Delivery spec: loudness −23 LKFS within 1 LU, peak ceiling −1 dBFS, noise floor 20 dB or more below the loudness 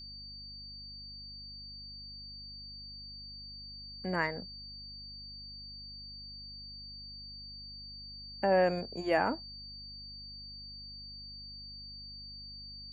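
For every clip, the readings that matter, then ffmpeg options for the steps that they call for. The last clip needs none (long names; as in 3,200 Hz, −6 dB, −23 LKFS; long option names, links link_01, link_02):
mains hum 50 Hz; hum harmonics up to 250 Hz; level of the hum −51 dBFS; interfering tone 4,600 Hz; level of the tone −45 dBFS; integrated loudness −38.5 LKFS; sample peak −15.0 dBFS; target loudness −23.0 LKFS
→ -af "bandreject=frequency=50:width_type=h:width=4,bandreject=frequency=100:width_type=h:width=4,bandreject=frequency=150:width_type=h:width=4,bandreject=frequency=200:width_type=h:width=4,bandreject=frequency=250:width_type=h:width=4"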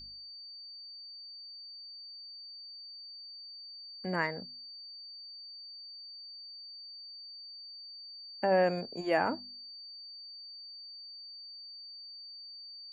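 mains hum none found; interfering tone 4,600 Hz; level of the tone −45 dBFS
→ -af "bandreject=frequency=4600:width=30"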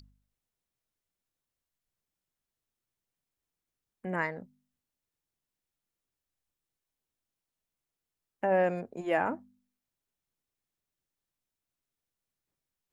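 interfering tone none found; integrated loudness −31.0 LKFS; sample peak −15.5 dBFS; target loudness −23.0 LKFS
→ -af "volume=8dB"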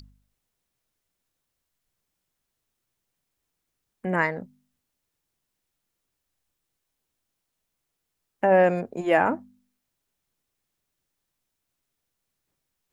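integrated loudness −23.0 LKFS; sample peak −7.5 dBFS; background noise floor −81 dBFS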